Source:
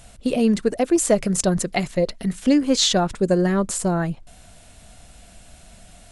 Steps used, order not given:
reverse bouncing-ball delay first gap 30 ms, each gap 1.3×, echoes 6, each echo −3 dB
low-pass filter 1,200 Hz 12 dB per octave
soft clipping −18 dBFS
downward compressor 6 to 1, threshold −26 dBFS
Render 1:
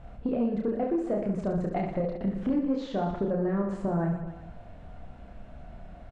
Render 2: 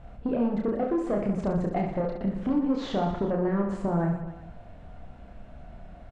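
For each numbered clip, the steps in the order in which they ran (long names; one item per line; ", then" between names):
downward compressor, then reverse bouncing-ball delay, then soft clipping, then low-pass filter
soft clipping, then low-pass filter, then downward compressor, then reverse bouncing-ball delay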